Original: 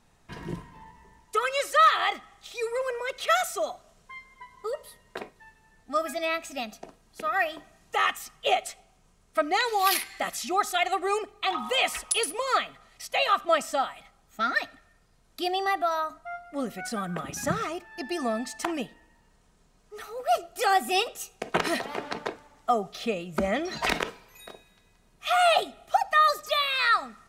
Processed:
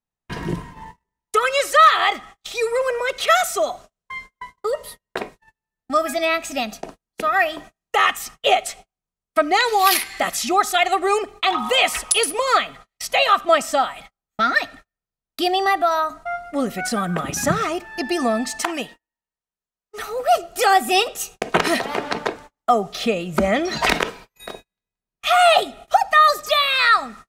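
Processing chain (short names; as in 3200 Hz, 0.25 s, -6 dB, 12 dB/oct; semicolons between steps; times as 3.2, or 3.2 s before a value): 18.62–19.98 low shelf 450 Hz -10.5 dB; gate -48 dBFS, range -39 dB; in parallel at -1.5 dB: compressor, threshold -34 dBFS, peak gain reduction 18 dB; on the sum: gain +6 dB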